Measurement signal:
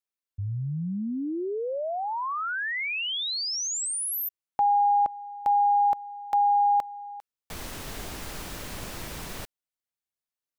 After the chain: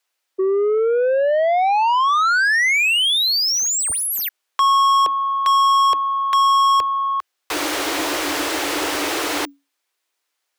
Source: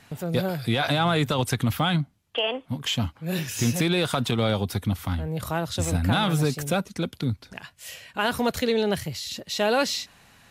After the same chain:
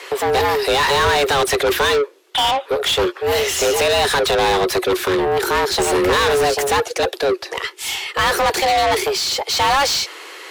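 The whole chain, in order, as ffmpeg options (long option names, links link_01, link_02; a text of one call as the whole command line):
ffmpeg -i in.wav -filter_complex "[0:a]afreqshift=280,asplit=2[link_01][link_02];[link_02]highpass=frequency=720:poles=1,volume=27dB,asoftclip=type=tanh:threshold=-9.5dB[link_03];[link_01][link_03]amix=inputs=2:normalize=0,lowpass=frequency=5000:poles=1,volume=-6dB,equalizer=frequency=76:width=1.1:gain=9" out.wav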